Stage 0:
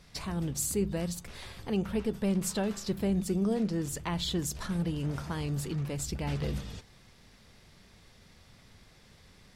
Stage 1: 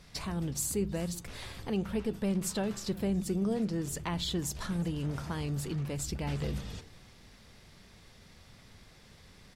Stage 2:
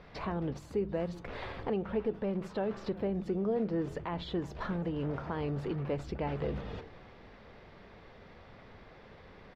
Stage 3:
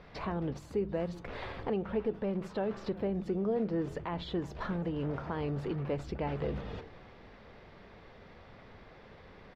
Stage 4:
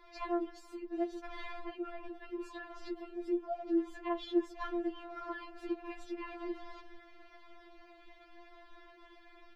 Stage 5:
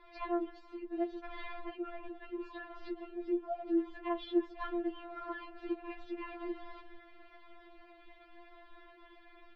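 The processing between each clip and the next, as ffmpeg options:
ffmpeg -i in.wav -filter_complex "[0:a]asplit=2[link_01][link_02];[link_02]acompressor=threshold=-38dB:ratio=6,volume=-2.5dB[link_03];[link_01][link_03]amix=inputs=2:normalize=0,asplit=3[link_04][link_05][link_06];[link_05]adelay=370,afreqshift=-58,volume=-22.5dB[link_07];[link_06]adelay=740,afreqshift=-116,volume=-31.6dB[link_08];[link_04][link_07][link_08]amix=inputs=3:normalize=0,volume=-3.5dB" out.wav
ffmpeg -i in.wav -af "alimiter=level_in=4.5dB:limit=-24dB:level=0:latency=1:release=285,volume=-4.5dB,firequalizer=gain_entry='entry(140,0);entry(450,10);entry(8300,-27)':delay=0.05:min_phase=1" out.wav
ffmpeg -i in.wav -af anull out.wav
ffmpeg -i in.wav -af "afftfilt=real='re*4*eq(mod(b,16),0)':imag='im*4*eq(mod(b,16),0)':win_size=2048:overlap=0.75" out.wav
ffmpeg -i in.wav -af "lowpass=frequency=4000:width=0.5412,lowpass=frequency=4000:width=1.3066" out.wav

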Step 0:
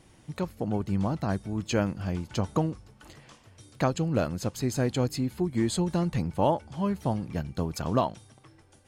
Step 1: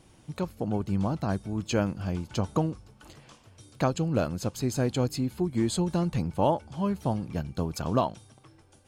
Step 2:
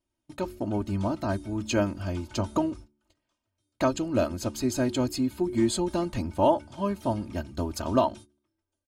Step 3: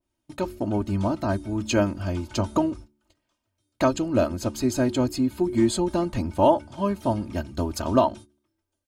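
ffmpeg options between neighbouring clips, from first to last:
ffmpeg -i in.wav -af "equalizer=frequency=1900:width=5.1:gain=-5.5" out.wav
ffmpeg -i in.wav -af "aecho=1:1:3.2:0.79,agate=range=-28dB:threshold=-42dB:ratio=16:detection=peak,bandreject=frequency=72.42:width_type=h:width=4,bandreject=frequency=144.84:width_type=h:width=4,bandreject=frequency=217.26:width_type=h:width=4,bandreject=frequency=289.68:width_type=h:width=4,bandreject=frequency=362.1:width_type=h:width=4" out.wav
ffmpeg -i in.wav -af "adynamicequalizer=threshold=0.00891:dfrequency=1800:dqfactor=0.7:tfrequency=1800:tqfactor=0.7:attack=5:release=100:ratio=0.375:range=2.5:mode=cutabove:tftype=highshelf,volume=3.5dB" out.wav

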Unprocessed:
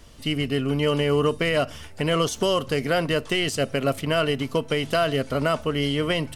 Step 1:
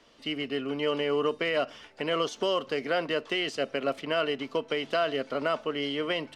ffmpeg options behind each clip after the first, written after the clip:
ffmpeg -i in.wav -filter_complex "[0:a]acrossover=split=230 5600:gain=0.0794 1 0.1[link_01][link_02][link_03];[link_01][link_02][link_03]amix=inputs=3:normalize=0,volume=-4.5dB" out.wav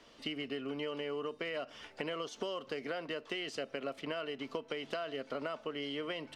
ffmpeg -i in.wav -af "acompressor=threshold=-35dB:ratio=10" out.wav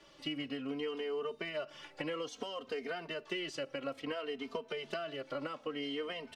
ffmpeg -i in.wav -filter_complex "[0:a]asplit=2[link_01][link_02];[link_02]adelay=3,afreqshift=-0.59[link_03];[link_01][link_03]amix=inputs=2:normalize=1,volume=2.5dB" out.wav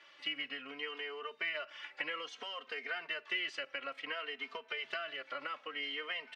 ffmpeg -i in.wav -af "bandpass=frequency=2000:width_type=q:width=1.6:csg=0,volume=7.5dB" out.wav

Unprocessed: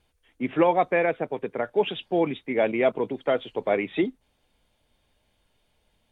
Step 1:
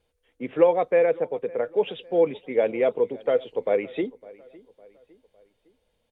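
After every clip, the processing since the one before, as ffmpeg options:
ffmpeg -i in.wav -filter_complex "[0:a]equalizer=frequency=490:width_type=o:width=0.38:gain=13,asplit=2[link_01][link_02];[link_02]adelay=557,lowpass=frequency=3300:poles=1,volume=-22dB,asplit=2[link_03][link_04];[link_04]adelay=557,lowpass=frequency=3300:poles=1,volume=0.46,asplit=2[link_05][link_06];[link_06]adelay=557,lowpass=frequency=3300:poles=1,volume=0.46[link_07];[link_01][link_03][link_05][link_07]amix=inputs=4:normalize=0,volume=-5.5dB" out.wav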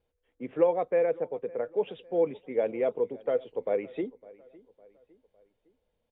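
ffmpeg -i in.wav -af "highshelf=frequency=2500:gain=-10.5,volume=-5dB" out.wav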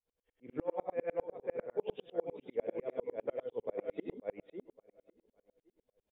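ffmpeg -i in.wav -filter_complex "[0:a]asplit=2[link_01][link_02];[link_02]aecho=0:1:65|102|118|548:0.376|0.473|0.562|0.631[link_03];[link_01][link_03]amix=inputs=2:normalize=0,alimiter=limit=-20.5dB:level=0:latency=1:release=231,aeval=exprs='val(0)*pow(10,-37*if(lt(mod(-10*n/s,1),2*abs(-10)/1000),1-mod(-10*n/s,1)/(2*abs(-10)/1000),(mod(-10*n/s,1)-2*abs(-10)/1000)/(1-2*abs(-10)/1000))/20)':channel_layout=same" out.wav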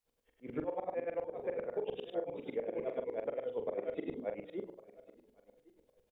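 ffmpeg -i in.wav -filter_complex "[0:a]bandreject=frequency=60:width_type=h:width=6,bandreject=frequency=120:width_type=h:width=6,bandreject=frequency=180:width_type=h:width=6,bandreject=frequency=240:width_type=h:width=6,bandreject=frequency=300:width_type=h:width=6,bandreject=frequency=360:width_type=h:width=6,bandreject=frequency=420:width_type=h:width=6,bandreject=frequency=480:width_type=h:width=6,bandreject=frequency=540:width_type=h:width=6,acompressor=threshold=-40dB:ratio=6,asplit=2[link_01][link_02];[link_02]adelay=44,volume=-8dB[link_03];[link_01][link_03]amix=inputs=2:normalize=0,volume=6.5dB" out.wav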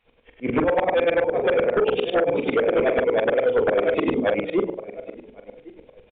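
ffmpeg -i in.wav -af "equalizer=frequency=2400:width_type=o:width=0.28:gain=7.5,aeval=exprs='0.0708*sin(PI/2*2.82*val(0)/0.0708)':channel_layout=same,aresample=8000,aresample=44100,volume=8.5dB" out.wav

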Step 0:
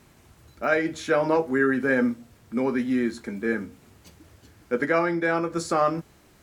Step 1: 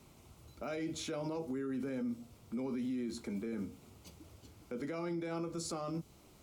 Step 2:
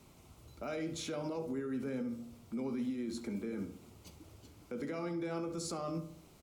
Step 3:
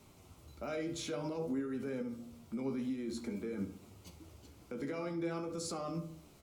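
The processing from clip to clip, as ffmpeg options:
ffmpeg -i in.wav -filter_complex "[0:a]equalizer=frequency=1700:width=4.3:gain=-14.5,acrossover=split=320|3000[link_01][link_02][link_03];[link_02]acompressor=threshold=-38dB:ratio=2[link_04];[link_01][link_04][link_03]amix=inputs=3:normalize=0,alimiter=level_in=3.5dB:limit=-24dB:level=0:latency=1:release=35,volume=-3.5dB,volume=-4dB" out.wav
ffmpeg -i in.wav -filter_complex "[0:a]asplit=2[link_01][link_02];[link_02]adelay=68,lowpass=frequency=2000:poles=1,volume=-9.5dB,asplit=2[link_03][link_04];[link_04]adelay=68,lowpass=frequency=2000:poles=1,volume=0.51,asplit=2[link_05][link_06];[link_06]adelay=68,lowpass=frequency=2000:poles=1,volume=0.51,asplit=2[link_07][link_08];[link_08]adelay=68,lowpass=frequency=2000:poles=1,volume=0.51,asplit=2[link_09][link_10];[link_10]adelay=68,lowpass=frequency=2000:poles=1,volume=0.51,asplit=2[link_11][link_12];[link_12]adelay=68,lowpass=frequency=2000:poles=1,volume=0.51[link_13];[link_01][link_03][link_05][link_07][link_09][link_11][link_13]amix=inputs=7:normalize=0" out.wav
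ffmpeg -i in.wav -af "flanger=delay=9.9:depth=5.1:regen=51:speed=0.53:shape=sinusoidal,volume=4dB" out.wav

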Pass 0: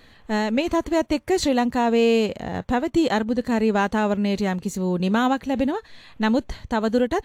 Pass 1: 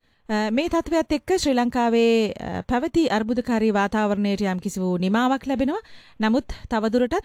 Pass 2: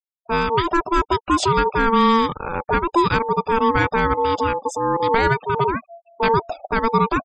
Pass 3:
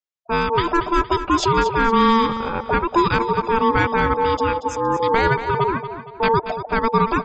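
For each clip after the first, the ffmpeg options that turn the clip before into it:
ffmpeg -i in.wav -af "agate=range=-33dB:threshold=-41dB:ratio=3:detection=peak" out.wav
ffmpeg -i in.wav -af "aeval=exprs='val(0)*sin(2*PI*680*n/s)':channel_layout=same,afftfilt=real='re*gte(hypot(re,im),0.0126)':imag='im*gte(hypot(re,im),0.0126)':win_size=1024:overlap=0.75,volume=5.5dB" out.wav
ffmpeg -i in.wav -filter_complex "[0:a]asplit=2[link_01][link_02];[link_02]aecho=0:1:232|464|696|928:0.282|0.11|0.0429|0.0167[link_03];[link_01][link_03]amix=inputs=2:normalize=0,aresample=16000,aresample=44100" out.wav

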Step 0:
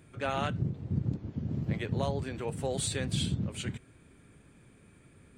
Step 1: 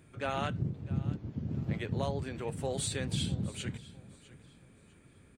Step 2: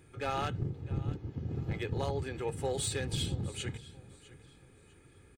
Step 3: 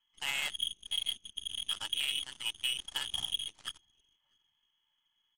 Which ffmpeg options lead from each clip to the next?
ffmpeg -i in.wav -af "aecho=1:1:652|1304|1956:0.112|0.0348|0.0108,volume=-2dB" out.wav
ffmpeg -i in.wav -af "aeval=exprs='clip(val(0),-1,0.0335)':channel_layout=same,aecho=1:1:2.4:0.51" out.wav
ffmpeg -i in.wav -af "lowpass=frequency=2900:width_type=q:width=0.5098,lowpass=frequency=2900:width_type=q:width=0.6013,lowpass=frequency=2900:width_type=q:width=0.9,lowpass=frequency=2900:width_type=q:width=2.563,afreqshift=-3400,afftfilt=real='re*(1-between(b*sr/4096,210,550))':imag='im*(1-between(b*sr/4096,210,550))':win_size=4096:overlap=0.75,aeval=exprs='0.0891*(cos(1*acos(clip(val(0)/0.0891,-1,1)))-cos(1*PI/2))+0.0141*(cos(7*acos(clip(val(0)/0.0891,-1,1)))-cos(7*PI/2))+0.002*(cos(8*acos(clip(val(0)/0.0891,-1,1)))-cos(8*PI/2))':channel_layout=same" out.wav

